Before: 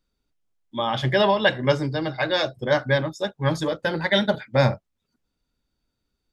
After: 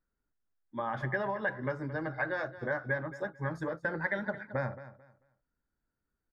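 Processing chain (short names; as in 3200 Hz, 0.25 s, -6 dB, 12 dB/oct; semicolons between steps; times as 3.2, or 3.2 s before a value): compressor 5:1, threshold -23 dBFS, peak gain reduction 9.5 dB; resonant high shelf 2300 Hz -10.5 dB, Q 3; on a send: feedback echo 0.221 s, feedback 24%, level -15 dB; on the sum: gain -8.5 dB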